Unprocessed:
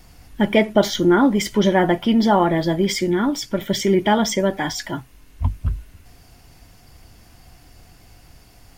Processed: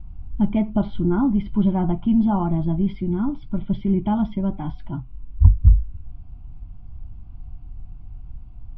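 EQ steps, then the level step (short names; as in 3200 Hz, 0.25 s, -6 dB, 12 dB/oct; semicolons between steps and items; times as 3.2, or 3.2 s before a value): air absorption 260 m; tilt -4.5 dB/oct; fixed phaser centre 1800 Hz, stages 6; -7.5 dB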